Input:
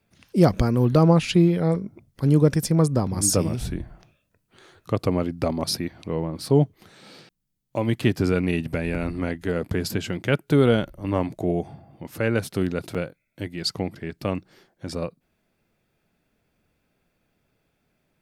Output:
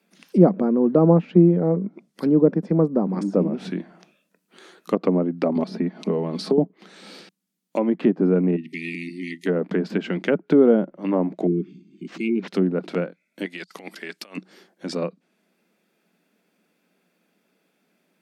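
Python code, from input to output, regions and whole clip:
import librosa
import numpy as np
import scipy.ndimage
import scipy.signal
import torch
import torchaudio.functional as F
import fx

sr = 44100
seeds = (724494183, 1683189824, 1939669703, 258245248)

y = fx.chain(x, sr, fx.peak_eq(hz=2100.0, db=-7.0, octaves=2.0),
    fx.comb(ms=4.7, depth=0.49),
    fx.band_squash(depth_pct=100), at=(5.55, 6.58))
y = fx.chain(y, sr, fx.brickwall_bandstop(low_hz=400.0, high_hz=1800.0),
    fx.low_shelf(hz=440.0, db=-10.5), at=(8.56, 9.46))
y = fx.chain(y, sr, fx.brickwall_bandstop(low_hz=420.0, high_hz=2100.0),
    fx.resample_linear(factor=4), at=(11.47, 12.48))
y = fx.chain(y, sr, fx.highpass(hz=1500.0, slope=6),
    fx.over_compress(threshold_db=-42.0, ratio=-0.5), at=(13.45, 14.37))
y = scipy.signal.sosfilt(scipy.signal.ellip(4, 1.0, 40, 180.0, 'highpass', fs=sr, output='sos'), y)
y = fx.peak_eq(y, sr, hz=770.0, db=-2.5, octaves=1.6)
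y = fx.env_lowpass_down(y, sr, base_hz=790.0, full_db=-22.0)
y = y * 10.0 ** (5.5 / 20.0)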